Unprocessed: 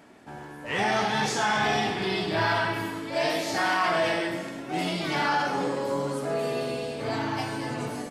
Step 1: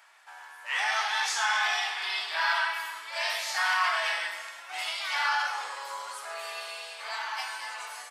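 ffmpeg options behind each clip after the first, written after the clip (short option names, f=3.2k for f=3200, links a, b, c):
-af "highpass=f=970:w=0.5412,highpass=f=970:w=1.3066,volume=1dB"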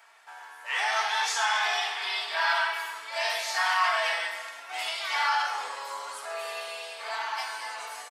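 -filter_complex "[0:a]acrossover=split=690|1400|6600[a][b][c][d];[a]acontrast=39[e];[e][b][c][d]amix=inputs=4:normalize=0,aecho=1:1:4.4:0.34"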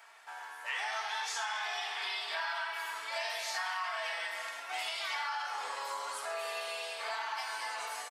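-af "acompressor=threshold=-34dB:ratio=6"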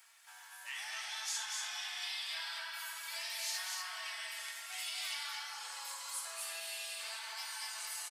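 -af "aderivative,aecho=1:1:242:0.708,volume=3dB"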